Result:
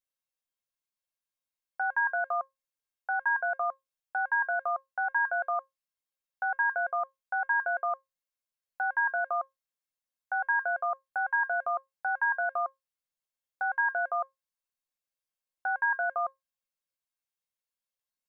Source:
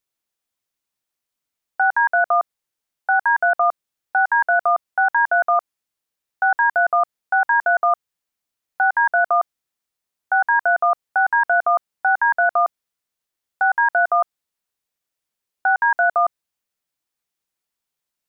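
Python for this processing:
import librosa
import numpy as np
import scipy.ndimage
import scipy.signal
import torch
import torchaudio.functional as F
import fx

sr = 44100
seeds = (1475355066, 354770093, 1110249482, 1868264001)

y = fx.peak_eq(x, sr, hz=350.0, db=-14.0, octaves=0.21)
y = fx.comb_fb(y, sr, f0_hz=540.0, decay_s=0.17, harmonics='all', damping=0.0, mix_pct=80)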